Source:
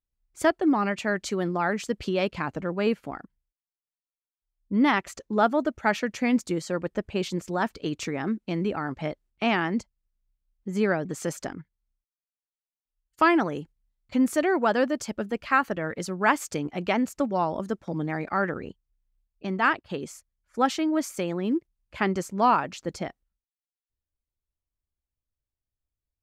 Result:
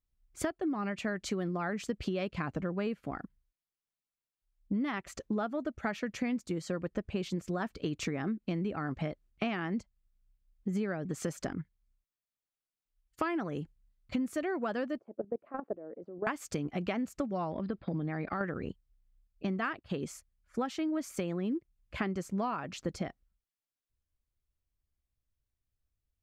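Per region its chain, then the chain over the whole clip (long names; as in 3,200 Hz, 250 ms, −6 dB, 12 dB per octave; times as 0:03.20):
0:14.99–0:16.27: flat-topped band-pass 460 Hz, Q 1.1 + output level in coarse steps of 15 dB
0:17.51–0:18.41: linear-phase brick-wall low-pass 5,100 Hz + downward compressor, threshold −27 dBFS
whole clip: bass and treble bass +5 dB, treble −3 dB; notch filter 900 Hz, Q 9; downward compressor 10 to 1, threshold −30 dBFS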